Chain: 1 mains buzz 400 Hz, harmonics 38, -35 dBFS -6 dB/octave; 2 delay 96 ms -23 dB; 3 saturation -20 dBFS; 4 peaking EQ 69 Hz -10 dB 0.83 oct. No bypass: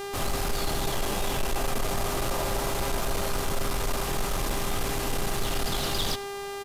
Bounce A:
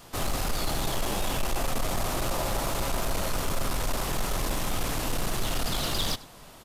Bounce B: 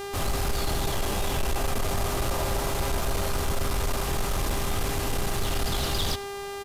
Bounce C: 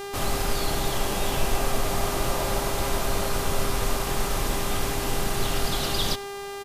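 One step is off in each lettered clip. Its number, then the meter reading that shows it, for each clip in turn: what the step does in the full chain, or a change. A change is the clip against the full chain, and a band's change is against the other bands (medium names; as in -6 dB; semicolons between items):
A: 1, 500 Hz band -2.5 dB; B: 4, 125 Hz band +4.0 dB; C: 3, distortion -14 dB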